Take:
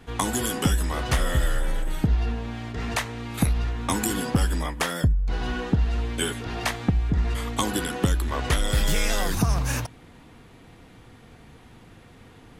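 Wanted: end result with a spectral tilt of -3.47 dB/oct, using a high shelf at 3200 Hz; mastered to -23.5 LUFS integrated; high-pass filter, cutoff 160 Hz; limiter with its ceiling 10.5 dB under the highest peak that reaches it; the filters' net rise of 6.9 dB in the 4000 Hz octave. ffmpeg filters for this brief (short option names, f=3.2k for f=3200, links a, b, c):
-af "highpass=160,highshelf=f=3.2k:g=3.5,equalizer=f=4k:t=o:g=6.5,volume=5.5dB,alimiter=limit=-11dB:level=0:latency=1"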